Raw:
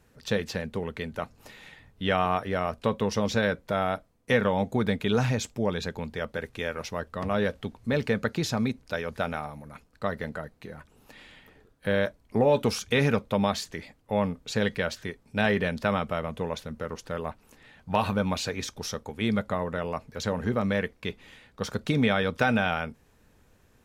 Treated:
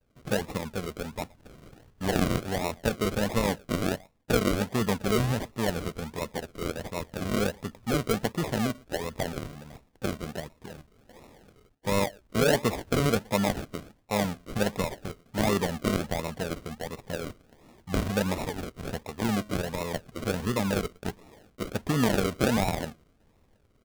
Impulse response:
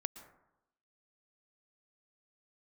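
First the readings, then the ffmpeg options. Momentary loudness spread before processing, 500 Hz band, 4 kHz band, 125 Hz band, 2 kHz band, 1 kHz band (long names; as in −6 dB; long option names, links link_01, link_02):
12 LU, −2.0 dB, −0.5 dB, 0.0 dB, −3.5 dB, −2.5 dB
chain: -filter_complex "[0:a]asplit=2[link_01][link_02];[link_02]adelay=116.6,volume=-26dB,highshelf=frequency=4000:gain=-2.62[link_03];[link_01][link_03]amix=inputs=2:normalize=0,acrusher=samples=40:mix=1:aa=0.000001:lfo=1:lforange=24:lforate=1.4,agate=range=-33dB:threshold=-57dB:ratio=3:detection=peak,volume=-1dB"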